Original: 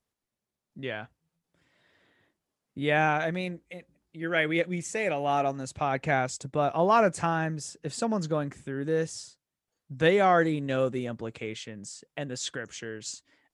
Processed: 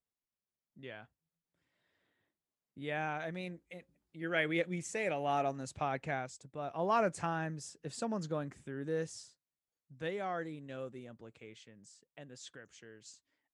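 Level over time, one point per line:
0:03.07 −13 dB
0:03.75 −6.5 dB
0:05.82 −6.5 dB
0:06.51 −17 dB
0:06.92 −8.5 dB
0:09.13 −8.5 dB
0:10.01 −16.5 dB

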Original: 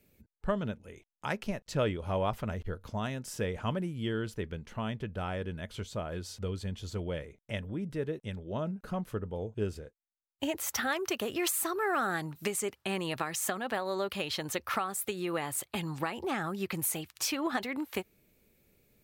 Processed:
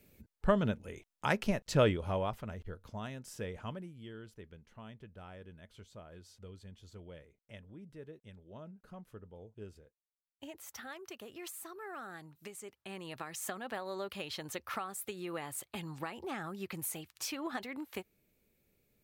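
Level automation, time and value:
0:01.84 +3 dB
0:02.42 −7.5 dB
0:03.58 −7.5 dB
0:04.05 −15 dB
0:12.57 −15 dB
0:13.50 −7 dB

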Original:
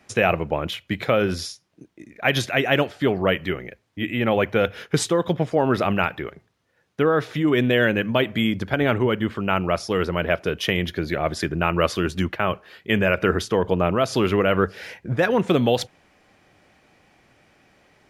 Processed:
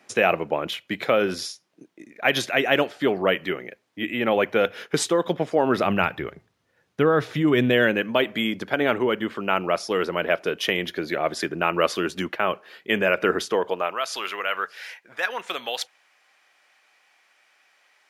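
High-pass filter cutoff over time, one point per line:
0:05.62 240 Hz
0:06.27 63 Hz
0:07.44 63 Hz
0:08.04 270 Hz
0:13.45 270 Hz
0:14.02 1,100 Hz

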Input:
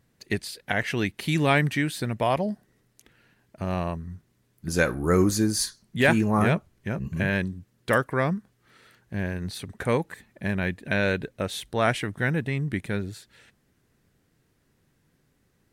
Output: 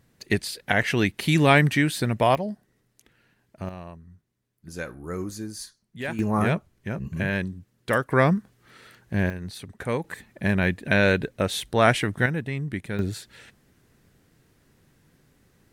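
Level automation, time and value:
+4 dB
from 0:02.35 −2.5 dB
from 0:03.69 −11.5 dB
from 0:06.19 −1 dB
from 0:08.10 +5.5 dB
from 0:09.30 −3 dB
from 0:10.04 +4.5 dB
from 0:12.26 −2 dB
from 0:12.99 +6.5 dB

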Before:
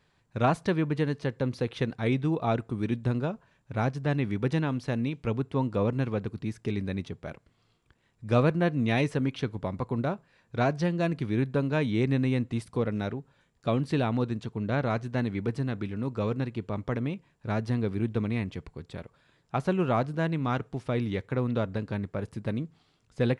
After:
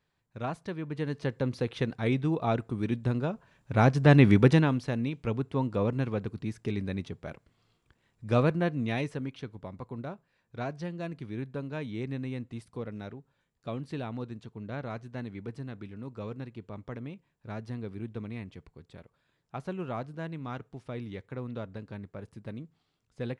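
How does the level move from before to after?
0:00.79 −10 dB
0:01.24 −1 dB
0:03.23 −1 dB
0:04.30 +11 dB
0:04.91 −1.5 dB
0:08.50 −1.5 dB
0:09.44 −9.5 dB

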